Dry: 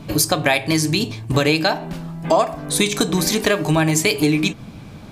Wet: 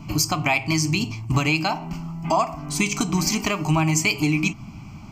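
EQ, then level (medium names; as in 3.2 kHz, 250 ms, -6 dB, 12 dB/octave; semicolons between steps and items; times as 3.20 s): static phaser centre 2.5 kHz, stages 8; 0.0 dB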